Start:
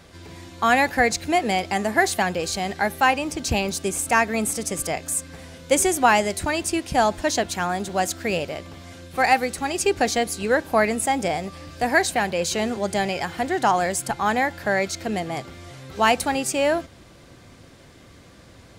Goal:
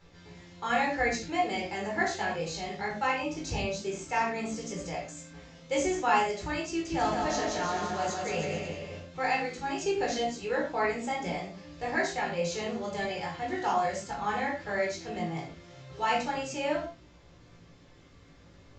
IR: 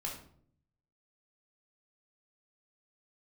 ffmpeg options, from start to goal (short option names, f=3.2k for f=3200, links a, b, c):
-filter_complex "[0:a]flanger=delay=16.5:depth=2.9:speed=0.18,asettb=1/sr,asplit=3[a][b][c];[a]atrim=end=6.684[d];[b]atrim=start=6.68:end=9,asetpts=PTS-STARTPTS,afade=t=in:d=0.004:c=qsin,afade=t=out:st=2.316:d=0.004:c=qsin,aecho=1:1:170|314.5|437.3|541.7|630.5:0.631|0.398|0.251|0.158|0.1,atrim=end_sample=102312[e];[c]atrim=start=8.996[f];[d][e]acrossfade=d=0.004:c1=hsin:c2=qsin[g];[g][f]acrossfade=d=0.004:c1=qsin:c2=hsin[h];[1:a]atrim=start_sample=2205,atrim=end_sample=6174[i];[h][i]afir=irnorm=-1:irlink=0,volume=-6.5dB" -ar 16000 -c:a libvorbis -b:a 96k